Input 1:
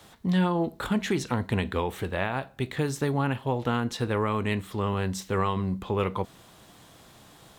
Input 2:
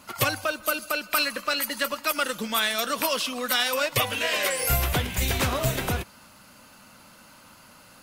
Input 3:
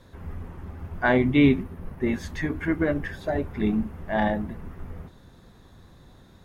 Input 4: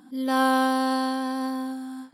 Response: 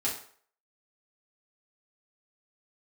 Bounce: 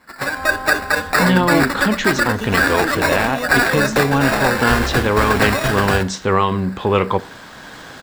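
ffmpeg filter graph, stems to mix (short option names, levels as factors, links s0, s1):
-filter_complex "[0:a]lowpass=f=6900:w=0.5412,lowpass=f=6900:w=1.3066,lowshelf=f=170:g=-6.5,adelay=950,volume=1.12,asplit=2[s0][s1];[s1]volume=0.0891[s2];[1:a]acrusher=samples=14:mix=1:aa=0.000001,equalizer=f=100:t=o:w=0.33:g=-12,equalizer=f=1600:t=o:w=0.33:g=10,equalizer=f=3150:t=o:w=0.33:g=8,volume=0.562,asplit=2[s3][s4];[s4]volume=0.188[s5];[2:a]adelay=150,volume=0.282[s6];[3:a]bandpass=f=1000:t=q:w=1.8:csg=0,volume=0.237[s7];[4:a]atrim=start_sample=2205[s8];[s2][s5]amix=inputs=2:normalize=0[s9];[s9][s8]afir=irnorm=-1:irlink=0[s10];[s0][s3][s6][s7][s10]amix=inputs=5:normalize=0,dynaudnorm=f=250:g=3:m=4.47"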